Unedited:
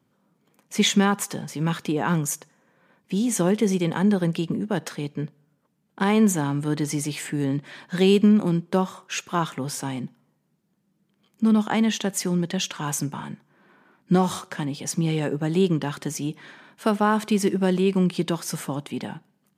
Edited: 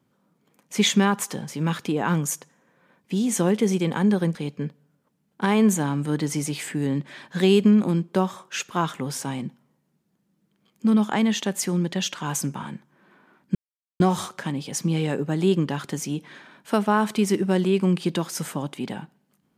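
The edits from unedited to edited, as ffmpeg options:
-filter_complex "[0:a]asplit=3[a][b][c];[a]atrim=end=4.352[d];[b]atrim=start=4.928:end=14.13,asetpts=PTS-STARTPTS,afade=t=out:st=9.198:d=0.004:c=hsin,apad=pad_dur=0.45[e];[c]atrim=start=14.13,asetpts=PTS-STARTPTS,afade=t=in:d=0.004:c=hsin[f];[e][f]concat=n=2:v=0:a=1[g];[d][g]acrossfade=d=0.004:c1=hsin:c2=hsin"

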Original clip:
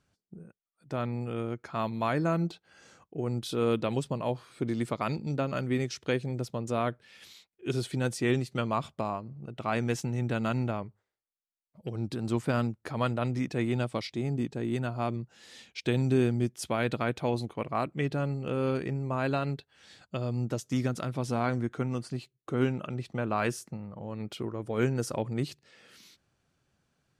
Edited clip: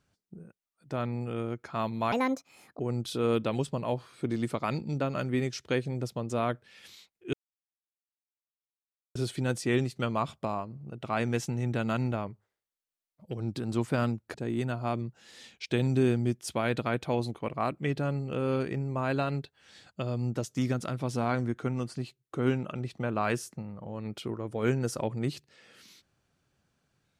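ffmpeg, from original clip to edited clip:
-filter_complex "[0:a]asplit=5[a][b][c][d][e];[a]atrim=end=2.124[f];[b]atrim=start=2.12:end=3.17,asetpts=PTS-STARTPTS,asetrate=68796,aresample=44100[g];[c]atrim=start=3.166:end=7.71,asetpts=PTS-STARTPTS,afade=t=out:st=4.54:d=0.004:c=hsin,apad=pad_dur=1.82[h];[d]atrim=start=7.71:end=12.902,asetpts=PTS-STARTPTS,afade=t=in:d=0.004:c=hsin[i];[e]atrim=start=14.488[j];[f][g]acrossfade=d=0.004:c1=hsin:c2=hsin[k];[h][i]concat=n=2:v=0:a=1[l];[k][l]acrossfade=d=0.004:c1=hsin:c2=hsin[m];[m][j]acrossfade=d=0.004:c1=hsin:c2=hsin"

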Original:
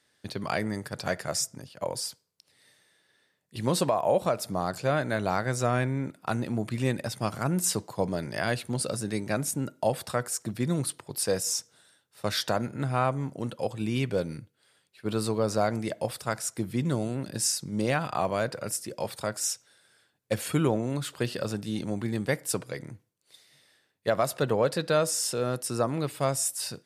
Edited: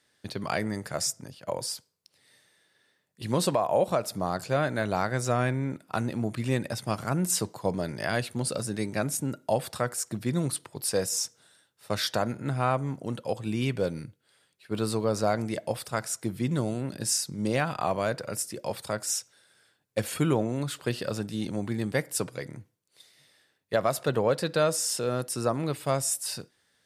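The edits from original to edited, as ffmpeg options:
-filter_complex "[0:a]asplit=2[a][b];[a]atrim=end=0.872[c];[b]atrim=start=1.208[d];[c][d]acrossfade=d=0.004:c1=hsin:c2=hsin"

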